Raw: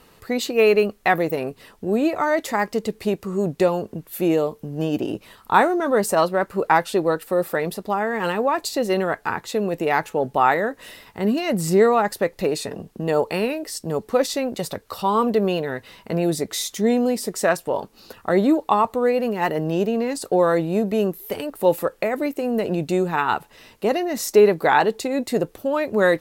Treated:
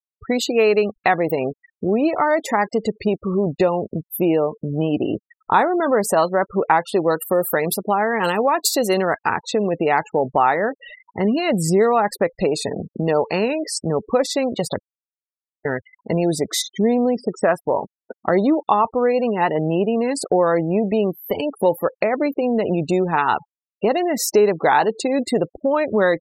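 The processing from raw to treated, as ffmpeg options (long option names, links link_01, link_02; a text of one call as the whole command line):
ffmpeg -i in.wav -filter_complex "[0:a]asettb=1/sr,asplit=3[link_01][link_02][link_03];[link_01]atrim=end=7.104[link_04];[link_02]atrim=start=7.1:end=9.38,asetpts=PTS-STARTPTS,afade=type=in:duration=0.004:curve=qsin,afade=type=out:start_time=2.276:duration=0.004:curve=qsin,highshelf=frequency=5000:gain=11.5[link_05];[link_03]atrim=start=9.376[link_06];[link_04][link_05]acrossfade=duration=0.004:curve1=hsin:curve2=qsin[link_07];[link_07][link_06]acrossfade=duration=0.004:curve1=qsin:curve2=hsin,asplit=3[link_08][link_09][link_10];[link_08]afade=type=out:start_time=16.61:duration=0.02[link_11];[link_09]aemphasis=mode=reproduction:type=75fm,afade=type=in:start_time=16.61:duration=0.02,afade=type=out:start_time=17.56:duration=0.02[link_12];[link_10]afade=type=in:start_time=17.56:duration=0.02[link_13];[link_11][link_12][link_13]amix=inputs=3:normalize=0,asplit=3[link_14][link_15][link_16];[link_14]atrim=end=14.83,asetpts=PTS-STARTPTS,afade=type=out:start_time=14.826:duration=0.004:curve=hsin[link_17];[link_15]atrim=start=14.83:end=15.65,asetpts=PTS-STARTPTS,volume=0[link_18];[link_16]atrim=start=15.65,asetpts=PTS-STARTPTS,afade=type=in:duration=0.004:curve=hsin[link_19];[link_17][link_18][link_19]concat=n=3:v=0:a=1,adynamicequalizer=threshold=0.0447:dfrequency=820:dqfactor=1.5:tfrequency=820:tqfactor=1.5:attack=5:release=100:ratio=0.375:range=1.5:mode=boostabove:tftype=bell,afftfilt=real='re*gte(hypot(re,im),0.0282)':imag='im*gte(hypot(re,im),0.0282)':win_size=1024:overlap=0.75,acompressor=threshold=-26dB:ratio=2,volume=7dB" out.wav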